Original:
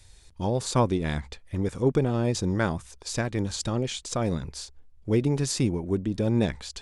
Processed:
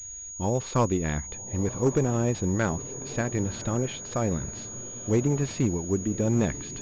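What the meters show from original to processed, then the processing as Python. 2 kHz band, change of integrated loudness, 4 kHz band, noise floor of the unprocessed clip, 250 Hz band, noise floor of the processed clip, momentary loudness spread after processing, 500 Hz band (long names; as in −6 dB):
−0.5 dB, −0.5 dB, −8.0 dB, −53 dBFS, 0.0 dB, −40 dBFS, 8 LU, 0.0 dB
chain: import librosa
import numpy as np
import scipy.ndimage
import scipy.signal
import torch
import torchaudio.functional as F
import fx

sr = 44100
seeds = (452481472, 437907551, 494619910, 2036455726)

y = fx.echo_diffused(x, sr, ms=1097, feedback_pct=41, wet_db=-15.5)
y = np.clip(y, -10.0 ** (-15.5 / 20.0), 10.0 ** (-15.5 / 20.0))
y = fx.pwm(y, sr, carrier_hz=6700.0)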